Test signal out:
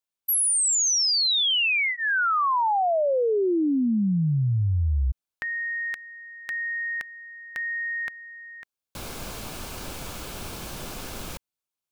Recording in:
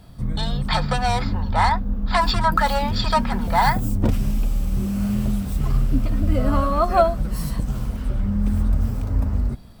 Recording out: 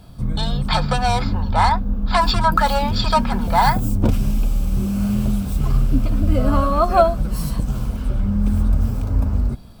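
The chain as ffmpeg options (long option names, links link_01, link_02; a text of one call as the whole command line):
ffmpeg -i in.wav -af "bandreject=frequency=1900:width=6.2,volume=2.5dB" out.wav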